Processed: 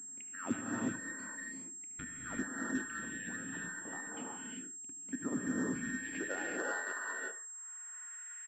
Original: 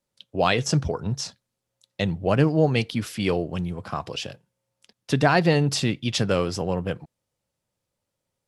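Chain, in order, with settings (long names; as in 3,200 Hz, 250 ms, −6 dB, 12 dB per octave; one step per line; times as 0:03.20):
frequency inversion band by band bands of 2,000 Hz
parametric band 2,700 Hz +6 dB 0.95 octaves
band-pass filter sweep 210 Hz → 2,300 Hz, 0:05.46–0:08.46
parametric band 270 Hz +14 dB 0.59 octaves
upward compression, threshold −36 dBFS
repeating echo 74 ms, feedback 22%, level −16 dB
0:04.28–0:05.58: output level in coarse steps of 10 dB
reverb whose tail is shaped and stops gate 410 ms rising, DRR −3.5 dB
switching amplifier with a slow clock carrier 7,500 Hz
level −5.5 dB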